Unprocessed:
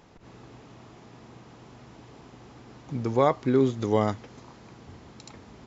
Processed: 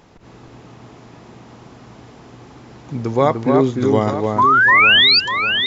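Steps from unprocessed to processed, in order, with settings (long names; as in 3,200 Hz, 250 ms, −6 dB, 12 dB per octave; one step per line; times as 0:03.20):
sound drawn into the spectrogram rise, 0:04.38–0:05.20, 960–4,900 Hz −18 dBFS
on a send: delay that swaps between a low-pass and a high-pass 298 ms, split 2,100 Hz, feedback 67%, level −3.5 dB
on the sum: level +6 dB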